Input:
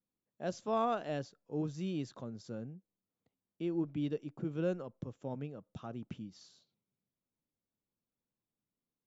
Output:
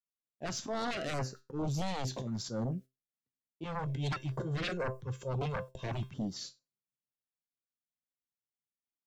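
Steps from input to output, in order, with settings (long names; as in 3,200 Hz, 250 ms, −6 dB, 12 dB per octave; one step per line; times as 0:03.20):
noise gate −58 dBFS, range −33 dB
0:03.65–0:06.14: comb filter 1.9 ms, depth 89%
downward compressor 5 to 1, threshold −37 dBFS, peak gain reduction 11 dB
volume swells 128 ms
tuned comb filter 130 Hz, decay 0.24 s, harmonics all, mix 70%
sine wavefolder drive 14 dB, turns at −35 dBFS
notch on a step sequencer 4.4 Hz 340–3,400 Hz
level +5 dB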